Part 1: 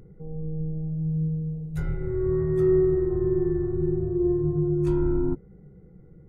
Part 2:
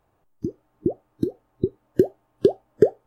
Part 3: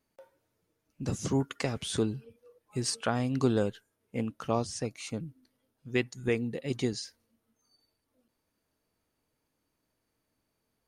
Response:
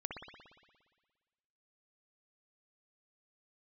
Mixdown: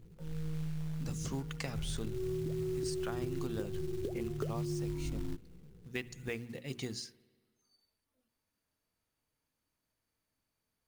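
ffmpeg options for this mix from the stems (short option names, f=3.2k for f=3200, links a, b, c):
-filter_complex "[0:a]tiltshelf=f=660:g=5.5,flanger=delay=18:depth=3.8:speed=0.37,volume=-9.5dB,asplit=2[a][b];[b]volume=-18dB[c];[1:a]adelay=1600,volume=-17.5dB[d];[2:a]equalizer=f=410:w=0.6:g=-6,bandreject=f=60:t=h:w=6,bandreject=f=120:t=h:w=6,bandreject=f=180:t=h:w=6,bandreject=f=240:t=h:w=6,bandreject=f=300:t=h:w=6,bandreject=f=360:t=h:w=6,bandreject=f=420:t=h:w=6,volume=-4.5dB,asplit=2[e][f];[f]volume=-17dB[g];[3:a]atrim=start_sample=2205[h];[c][g]amix=inputs=2:normalize=0[i];[i][h]afir=irnorm=-1:irlink=0[j];[a][d][e][j]amix=inputs=4:normalize=0,acrusher=bits=5:mode=log:mix=0:aa=0.000001,acompressor=threshold=-33dB:ratio=6"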